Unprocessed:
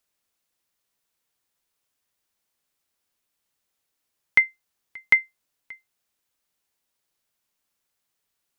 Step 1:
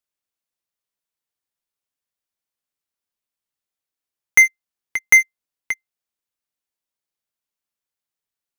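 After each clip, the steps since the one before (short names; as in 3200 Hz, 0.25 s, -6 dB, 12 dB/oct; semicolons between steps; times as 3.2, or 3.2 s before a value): sample leveller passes 5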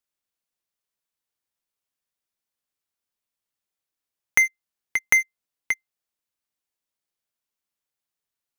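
compressor 6:1, threshold -16 dBFS, peak gain reduction 8 dB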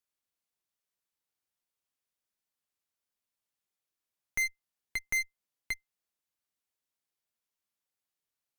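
limiter -16.5 dBFS, peak gain reduction 11 dB; tube stage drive 27 dB, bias 0.6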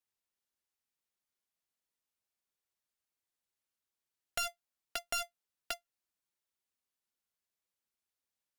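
envelope flanger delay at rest 6.8 ms, full sweep at -37 dBFS; polarity switched at an audio rate 690 Hz; gain +1 dB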